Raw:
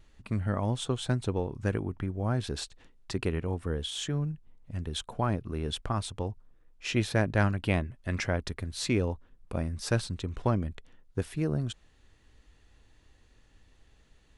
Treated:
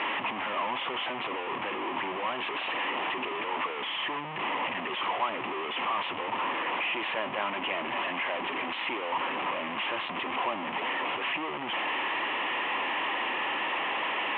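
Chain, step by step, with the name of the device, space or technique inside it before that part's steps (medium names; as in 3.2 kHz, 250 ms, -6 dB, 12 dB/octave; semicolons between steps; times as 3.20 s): digital answering machine (band-pass 360–3300 Hz; one-bit delta coder 16 kbps, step -22 dBFS; cabinet simulation 420–3200 Hz, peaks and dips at 450 Hz -9 dB, 640 Hz -4 dB, 1 kHz +6 dB, 1.5 kHz -10 dB, 3 kHz +4 dB)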